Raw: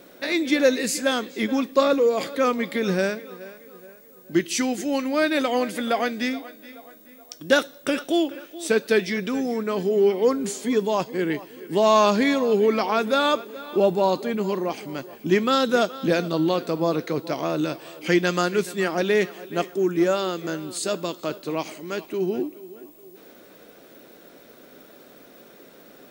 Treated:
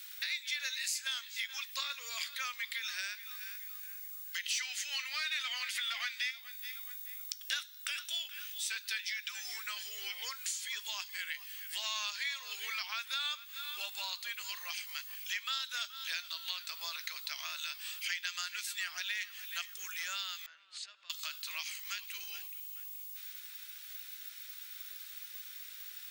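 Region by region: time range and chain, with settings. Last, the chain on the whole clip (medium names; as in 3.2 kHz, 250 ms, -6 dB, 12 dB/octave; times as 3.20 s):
4.43–6.31 s: high-pass 670 Hz 6 dB/octave + overdrive pedal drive 15 dB, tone 3.4 kHz, clips at -12 dBFS + band-stop 1.6 kHz, Q 21
20.46–21.10 s: tape spacing loss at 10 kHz 35 dB + compression 5:1, threshold -39 dBFS
whole clip: Bessel high-pass 2.8 kHz, order 4; dynamic bell 10 kHz, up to -5 dB, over -50 dBFS, Q 0.83; compression 3:1, threshold -45 dBFS; trim +7.5 dB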